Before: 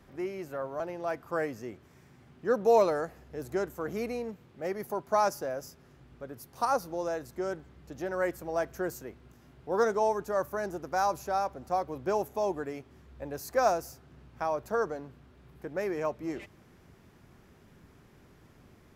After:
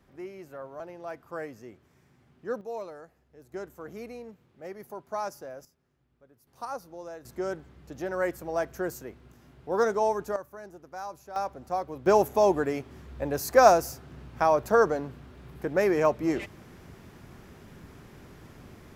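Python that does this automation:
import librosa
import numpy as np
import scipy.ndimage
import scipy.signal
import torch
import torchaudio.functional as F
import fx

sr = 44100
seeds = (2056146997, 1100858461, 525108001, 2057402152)

y = fx.gain(x, sr, db=fx.steps((0.0, -5.5), (2.61, -14.5), (3.54, -7.0), (5.65, -17.0), (6.47, -8.5), (7.25, 1.5), (10.36, -10.5), (11.36, -0.5), (12.06, 8.5)))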